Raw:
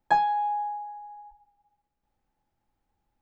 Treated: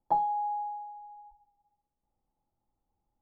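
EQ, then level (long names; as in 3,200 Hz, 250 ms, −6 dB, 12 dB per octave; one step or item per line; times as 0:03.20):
Savitzky-Golay smoothing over 65 samples
−4.0 dB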